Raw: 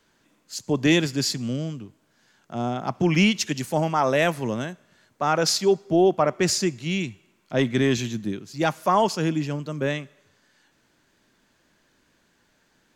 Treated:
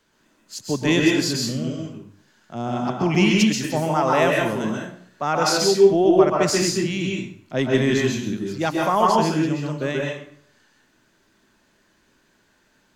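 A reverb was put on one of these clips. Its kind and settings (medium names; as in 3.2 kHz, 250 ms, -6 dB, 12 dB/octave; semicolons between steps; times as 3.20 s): plate-style reverb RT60 0.56 s, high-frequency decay 0.75×, pre-delay 115 ms, DRR -1.5 dB; trim -1 dB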